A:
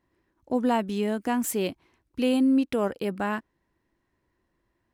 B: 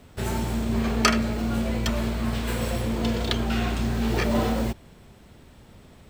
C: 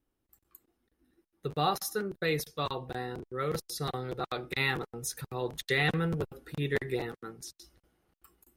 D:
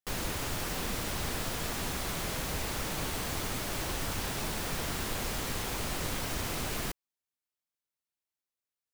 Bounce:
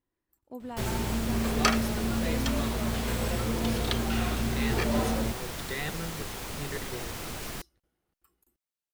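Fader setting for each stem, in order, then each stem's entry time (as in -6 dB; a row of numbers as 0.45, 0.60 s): -16.0, -4.0, -8.0, -3.0 dB; 0.00, 0.60, 0.00, 0.70 s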